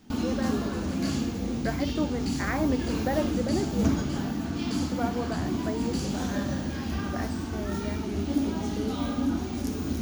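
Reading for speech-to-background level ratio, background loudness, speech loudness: −5.0 dB, −30.0 LKFS, −35.0 LKFS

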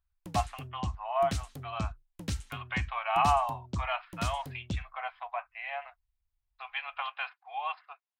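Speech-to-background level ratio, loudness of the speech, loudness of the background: 5.5 dB, −34.0 LKFS, −39.5 LKFS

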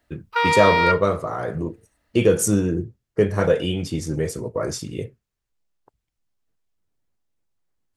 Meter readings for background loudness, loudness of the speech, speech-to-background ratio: −20.0 LKFS, −22.5 LKFS, −2.5 dB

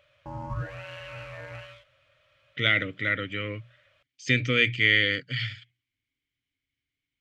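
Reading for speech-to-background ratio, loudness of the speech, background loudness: 14.5 dB, −24.5 LKFS, −39.0 LKFS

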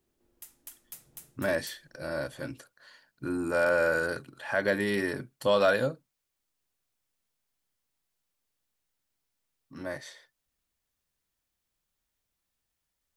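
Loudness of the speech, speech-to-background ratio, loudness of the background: −29.0 LKFS, 19.0 dB, −48.0 LKFS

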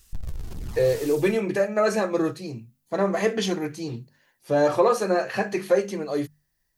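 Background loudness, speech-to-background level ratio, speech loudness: −39.0 LKFS, 15.0 dB, −24.0 LKFS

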